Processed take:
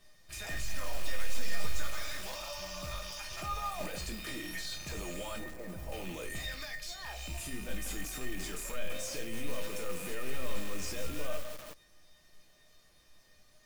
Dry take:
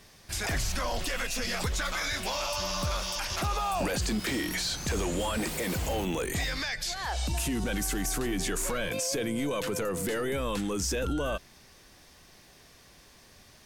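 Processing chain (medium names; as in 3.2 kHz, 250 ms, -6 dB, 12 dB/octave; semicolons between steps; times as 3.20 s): rattle on loud lows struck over -40 dBFS, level -26 dBFS; 5.38–5.92 s: low-pass 1.2 kHz 12 dB/octave; modulation noise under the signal 16 dB; feedback comb 610 Hz, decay 0.32 s, mix 90%; simulated room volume 160 m³, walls furnished, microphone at 0.72 m; bit-crushed delay 166 ms, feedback 55%, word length 7-bit, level -9.5 dB; trim +5 dB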